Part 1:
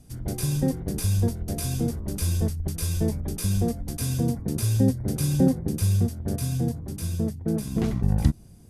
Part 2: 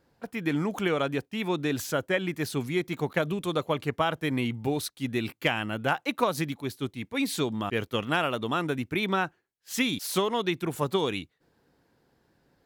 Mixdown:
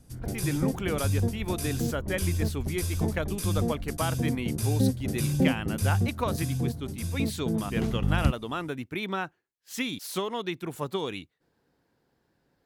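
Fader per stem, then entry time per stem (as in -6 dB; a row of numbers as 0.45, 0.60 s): -3.5, -4.5 dB; 0.00, 0.00 s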